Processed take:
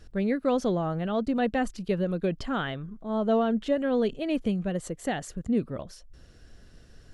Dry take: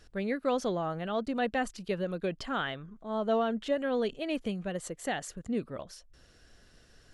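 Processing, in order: low shelf 400 Hz +9.5 dB

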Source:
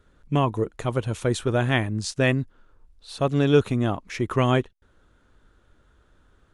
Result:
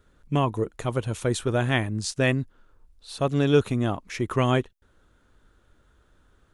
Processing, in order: high shelf 7900 Hz +6 dB; gain -1.5 dB

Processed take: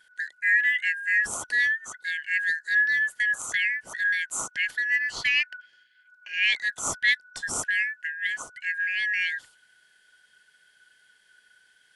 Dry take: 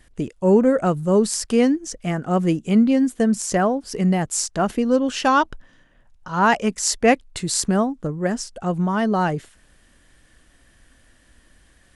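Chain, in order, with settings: four-band scrambler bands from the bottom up 4123; gain -7 dB

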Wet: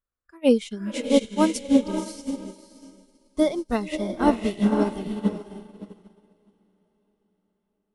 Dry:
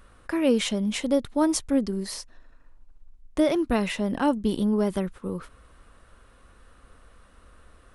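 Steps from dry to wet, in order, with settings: spectral noise reduction 14 dB; diffused feedback echo 0.569 s, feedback 48%, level -3 dB; upward expander 2.5:1, over -38 dBFS; gain +5.5 dB

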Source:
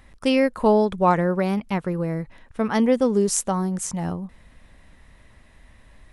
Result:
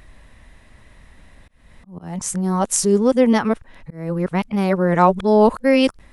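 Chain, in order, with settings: whole clip reversed; auto swell 0.265 s; gain +4 dB

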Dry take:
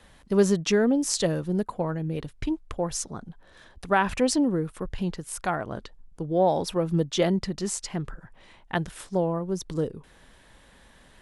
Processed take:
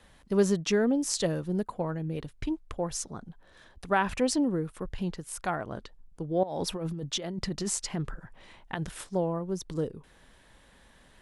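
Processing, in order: 6.43–9.04 negative-ratio compressor -29 dBFS, ratio -1; gain -3.5 dB

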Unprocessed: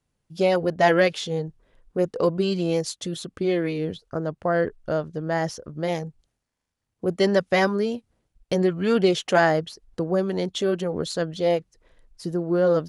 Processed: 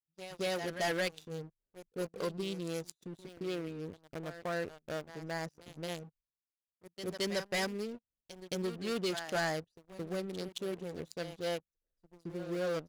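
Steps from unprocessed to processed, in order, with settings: Wiener smoothing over 41 samples; pre-emphasis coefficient 0.9; pre-echo 0.221 s -14 dB; sample leveller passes 3; gain -5.5 dB

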